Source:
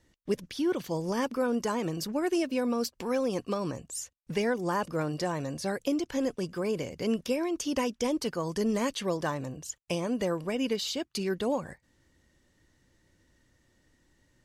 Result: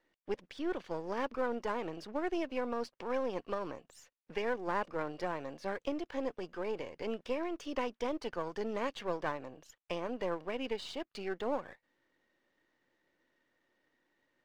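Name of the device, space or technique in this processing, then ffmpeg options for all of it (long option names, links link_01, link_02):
crystal radio: -af "highpass=380,lowpass=2800,aeval=exprs='if(lt(val(0),0),0.447*val(0),val(0))':channel_layout=same,volume=-1.5dB"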